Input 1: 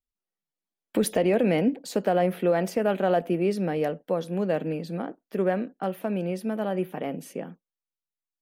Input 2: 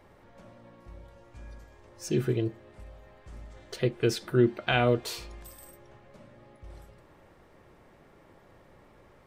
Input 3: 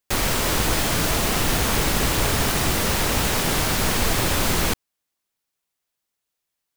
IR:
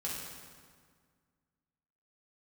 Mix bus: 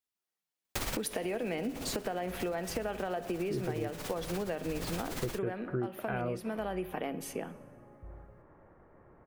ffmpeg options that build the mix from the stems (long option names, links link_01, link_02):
-filter_complex "[0:a]highpass=frequency=400:poles=1,equalizer=frequency=550:width=5.6:gain=-6,volume=2dB,asplit=3[link_01][link_02][link_03];[link_02]volume=-17.5dB[link_04];[1:a]lowpass=frequency=1700:width=0.5412,lowpass=frequency=1700:width=1.3066,adelay=1400,volume=-1.5dB[link_05];[2:a]tremolo=f=17:d=0.62,adelay=650,volume=-5.5dB[link_06];[link_03]apad=whole_len=331433[link_07];[link_06][link_07]sidechaincompress=threshold=-37dB:ratio=8:attack=8.4:release=494[link_08];[link_01][link_08]amix=inputs=2:normalize=0,acompressor=threshold=-28dB:ratio=2.5,volume=0dB[link_09];[3:a]atrim=start_sample=2205[link_10];[link_04][link_10]afir=irnorm=-1:irlink=0[link_11];[link_05][link_09][link_11]amix=inputs=3:normalize=0,acompressor=threshold=-31dB:ratio=6"